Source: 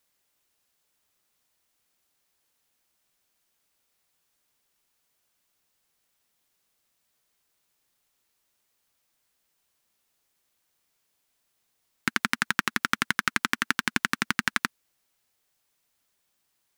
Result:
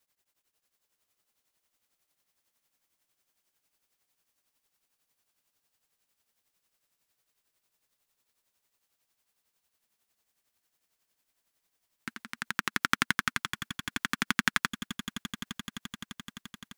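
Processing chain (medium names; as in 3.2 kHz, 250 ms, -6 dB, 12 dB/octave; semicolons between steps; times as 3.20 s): tremolo triangle 11 Hz, depth 95%; echo with a slow build-up 86 ms, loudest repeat 8, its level -16.5 dB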